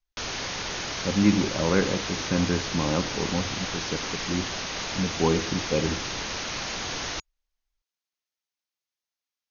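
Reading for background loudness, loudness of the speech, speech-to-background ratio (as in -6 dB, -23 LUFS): -30.5 LUFS, -27.5 LUFS, 3.0 dB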